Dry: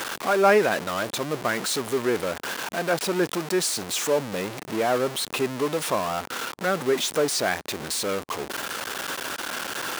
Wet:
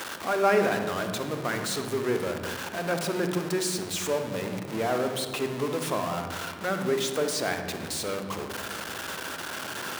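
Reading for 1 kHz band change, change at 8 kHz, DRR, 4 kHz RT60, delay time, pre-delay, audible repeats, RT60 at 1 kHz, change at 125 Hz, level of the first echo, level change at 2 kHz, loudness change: −4.0 dB, −5.0 dB, 5.5 dB, 1.0 s, no echo audible, 37 ms, no echo audible, 1.5 s, +1.0 dB, no echo audible, −4.0 dB, −3.5 dB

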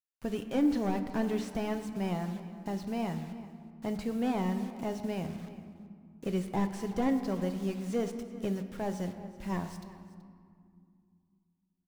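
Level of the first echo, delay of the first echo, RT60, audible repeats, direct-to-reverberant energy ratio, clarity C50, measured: −18.0 dB, 378 ms, 2.2 s, 1, 6.5 dB, 8.5 dB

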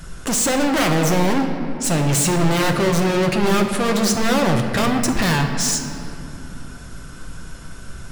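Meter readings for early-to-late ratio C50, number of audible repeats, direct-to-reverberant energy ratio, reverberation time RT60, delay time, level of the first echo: 5.5 dB, no echo audible, 3.0 dB, 2.8 s, no echo audible, no echo audible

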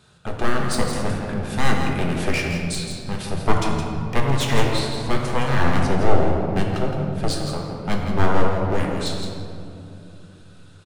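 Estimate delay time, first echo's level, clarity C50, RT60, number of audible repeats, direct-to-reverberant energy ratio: 166 ms, −8.0 dB, 1.5 dB, 2.7 s, 1, −1.0 dB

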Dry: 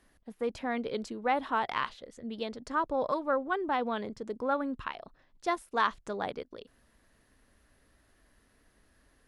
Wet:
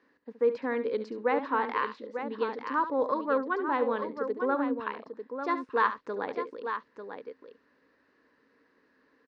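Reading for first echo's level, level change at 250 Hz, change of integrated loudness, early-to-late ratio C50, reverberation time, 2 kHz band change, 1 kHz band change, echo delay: −12.0 dB, +2.5 dB, +2.5 dB, no reverb audible, no reverb audible, +2.0 dB, +1.5 dB, 70 ms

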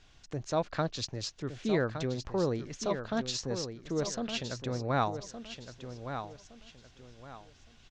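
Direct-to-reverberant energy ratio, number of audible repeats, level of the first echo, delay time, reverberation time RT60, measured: no reverb audible, 3, −9.0 dB, 1,165 ms, no reverb audible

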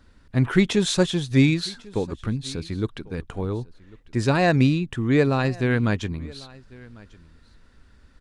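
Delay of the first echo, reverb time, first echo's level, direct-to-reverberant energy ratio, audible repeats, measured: 1,097 ms, no reverb audible, −23.0 dB, no reverb audible, 1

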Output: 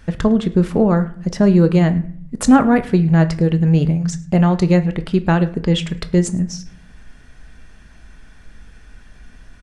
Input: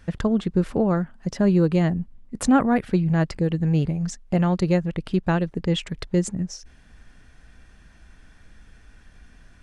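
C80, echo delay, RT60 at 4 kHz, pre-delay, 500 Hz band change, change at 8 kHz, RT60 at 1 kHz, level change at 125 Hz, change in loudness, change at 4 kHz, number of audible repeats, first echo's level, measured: 18.5 dB, 106 ms, 0.35 s, 5 ms, +6.0 dB, +5.5 dB, 0.55 s, +7.0 dB, +6.5 dB, +5.5 dB, 1, −22.0 dB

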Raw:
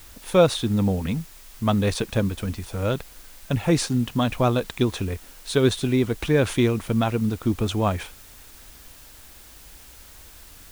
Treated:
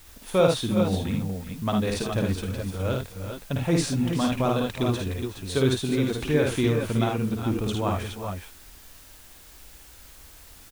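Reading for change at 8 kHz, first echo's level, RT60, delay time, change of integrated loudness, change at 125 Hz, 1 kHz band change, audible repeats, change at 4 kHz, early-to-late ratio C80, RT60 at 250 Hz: −2.0 dB, −3.5 dB, no reverb audible, 53 ms, −2.5 dB, −2.0 dB, −2.0 dB, 3, −2.0 dB, no reverb audible, no reverb audible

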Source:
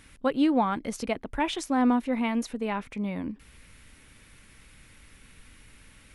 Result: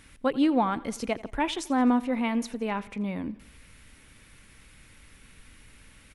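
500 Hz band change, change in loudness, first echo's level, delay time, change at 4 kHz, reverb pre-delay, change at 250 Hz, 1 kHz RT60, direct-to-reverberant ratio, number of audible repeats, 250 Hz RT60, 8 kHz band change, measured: 0.0 dB, 0.0 dB, −20.0 dB, 85 ms, 0.0 dB, no reverb audible, 0.0 dB, no reverb audible, no reverb audible, 3, no reverb audible, 0.0 dB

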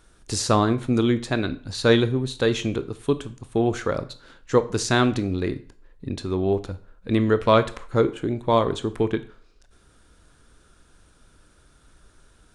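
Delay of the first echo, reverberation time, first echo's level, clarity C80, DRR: no echo audible, 0.50 s, no echo audible, 20.0 dB, 12.0 dB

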